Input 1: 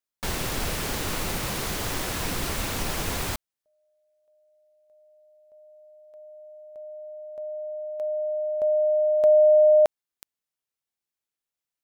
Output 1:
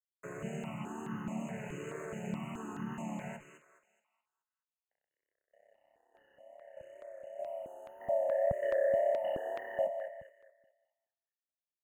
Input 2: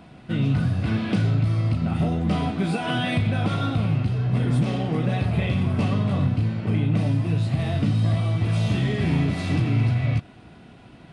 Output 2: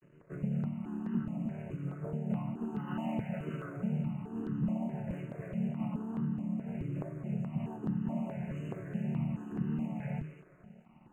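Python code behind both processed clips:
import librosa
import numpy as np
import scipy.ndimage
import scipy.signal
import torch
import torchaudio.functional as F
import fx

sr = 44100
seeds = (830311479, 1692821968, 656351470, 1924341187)

p1 = fx.chord_vocoder(x, sr, chord='major triad', root=50)
p2 = fx.hum_notches(p1, sr, base_hz=50, count=6)
p3 = fx.dynamic_eq(p2, sr, hz=610.0, q=2.6, threshold_db=-37.0, ratio=4.0, max_db=6)
p4 = fx.rider(p3, sr, range_db=4, speed_s=0.5)
p5 = np.sign(p4) * np.maximum(np.abs(p4) - 10.0 ** (-49.5 / 20.0), 0.0)
p6 = fx.wow_flutter(p5, sr, seeds[0], rate_hz=2.1, depth_cents=61.0)
p7 = 10.0 ** (-16.0 / 20.0) * np.tanh(p6 / 10.0 ** (-16.0 / 20.0))
p8 = fx.brickwall_bandstop(p7, sr, low_hz=3000.0, high_hz=6300.0)
p9 = fx.doubler(p8, sr, ms=18.0, db=-12)
p10 = p9 + fx.echo_thinned(p9, sr, ms=211, feedback_pct=42, hz=510.0, wet_db=-9.0, dry=0)
p11 = fx.phaser_held(p10, sr, hz=4.7, low_hz=210.0, high_hz=2300.0)
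y = p11 * 10.0 ** (-7.0 / 20.0)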